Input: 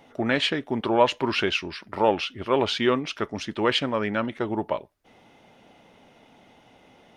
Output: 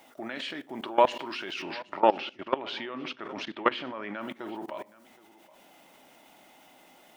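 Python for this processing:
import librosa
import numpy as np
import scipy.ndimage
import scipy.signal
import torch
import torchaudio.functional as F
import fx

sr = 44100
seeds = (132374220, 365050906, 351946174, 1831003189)

y = scipy.signal.sosfilt(scipy.signal.butter(2, 300.0, 'highpass', fs=sr, output='sos'), x)
y = fx.room_shoebox(y, sr, seeds[0], volume_m3=940.0, walls='furnished', distance_m=0.56)
y = fx.dmg_noise_colour(y, sr, seeds[1], colour='white', level_db=-64.0)
y = fx.lowpass(y, sr, hz=3300.0, slope=12, at=(1.62, 4.21))
y = y + 10.0 ** (-21.5 / 20.0) * np.pad(y, (int(770 * sr / 1000.0), 0))[:len(y)]
y = fx.level_steps(y, sr, step_db=20)
y = fx.peak_eq(y, sr, hz=460.0, db=-11.0, octaves=0.21)
y = y * 10.0 ** (4.0 / 20.0)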